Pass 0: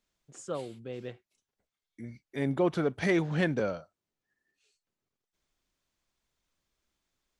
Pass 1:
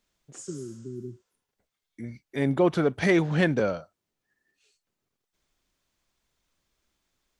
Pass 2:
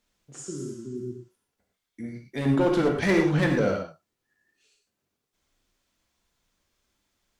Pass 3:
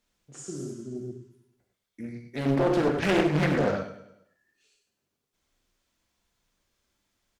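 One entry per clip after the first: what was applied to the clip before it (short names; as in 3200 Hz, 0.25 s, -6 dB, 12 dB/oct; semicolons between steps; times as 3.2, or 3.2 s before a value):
spectral repair 0.51–1.45, 410–8700 Hz both; gain +5 dB
one-sided clip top -21 dBFS; non-linear reverb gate 0.14 s flat, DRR 1.5 dB
on a send: feedback echo 0.101 s, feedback 47%, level -12.5 dB; on the sum: Doppler distortion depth 0.62 ms; gain -1.5 dB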